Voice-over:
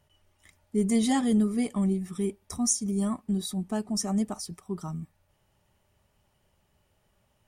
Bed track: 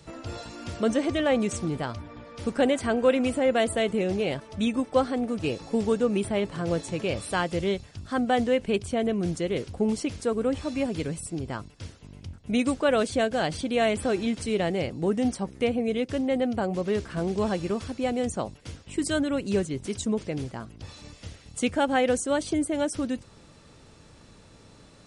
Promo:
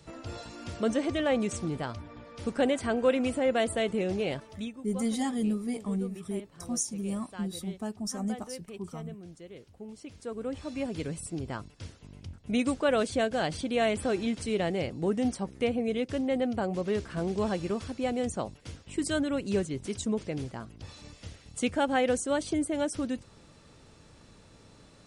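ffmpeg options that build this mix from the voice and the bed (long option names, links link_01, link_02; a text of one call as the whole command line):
ffmpeg -i stem1.wav -i stem2.wav -filter_complex "[0:a]adelay=4100,volume=-5.5dB[link_01];[1:a]volume=12.5dB,afade=type=out:start_time=4.41:duration=0.34:silence=0.16788,afade=type=in:start_time=9.93:duration=1.32:silence=0.158489[link_02];[link_01][link_02]amix=inputs=2:normalize=0" out.wav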